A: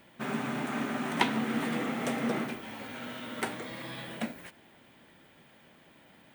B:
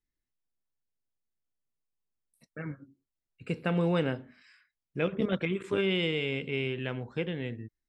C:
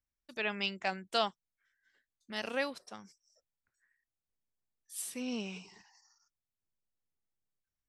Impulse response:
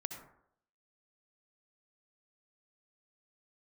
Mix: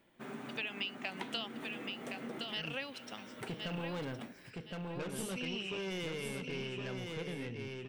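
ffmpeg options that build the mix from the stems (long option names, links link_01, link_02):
-filter_complex "[0:a]equalizer=frequency=380:width_type=o:width=0.77:gain=5,volume=-12dB[link_01];[1:a]asoftclip=type=tanh:threshold=-30.5dB,volume=-1dB,asplit=2[link_02][link_03];[link_03]volume=-5.5dB[link_04];[2:a]equalizer=frequency=2900:width=2.2:gain=14.5,acompressor=threshold=-28dB:ratio=6,adelay=200,volume=-0.5dB,asplit=2[link_05][link_06];[link_06]volume=-7.5dB[link_07];[link_04][link_07]amix=inputs=2:normalize=0,aecho=0:1:1066|2132|3198:1|0.21|0.0441[link_08];[link_01][link_02][link_05][link_08]amix=inputs=4:normalize=0,acompressor=threshold=-41dB:ratio=2"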